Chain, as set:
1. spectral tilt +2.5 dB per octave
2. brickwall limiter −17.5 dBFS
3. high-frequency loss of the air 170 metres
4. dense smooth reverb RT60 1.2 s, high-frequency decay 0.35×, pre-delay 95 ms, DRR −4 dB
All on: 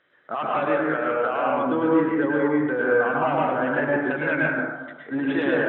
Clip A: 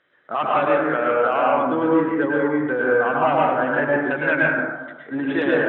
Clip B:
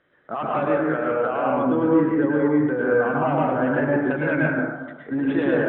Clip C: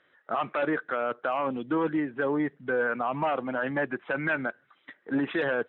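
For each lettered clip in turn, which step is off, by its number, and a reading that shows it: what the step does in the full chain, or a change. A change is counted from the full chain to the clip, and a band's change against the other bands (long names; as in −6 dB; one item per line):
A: 2, average gain reduction 1.5 dB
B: 1, 125 Hz band +6.0 dB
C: 4, change in crest factor −2.5 dB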